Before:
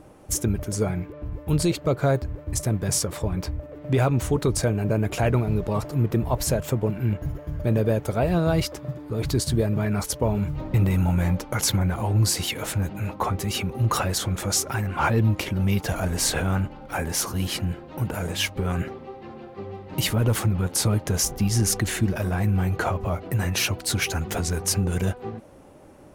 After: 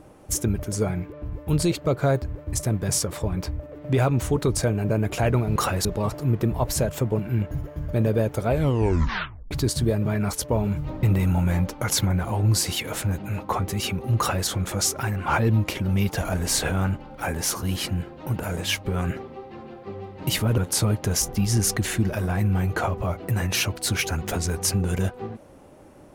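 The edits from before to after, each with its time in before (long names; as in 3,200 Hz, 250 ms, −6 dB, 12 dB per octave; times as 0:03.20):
0:08.19: tape stop 1.03 s
0:13.89–0:14.18: duplicate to 0:05.56
0:20.29–0:20.61: remove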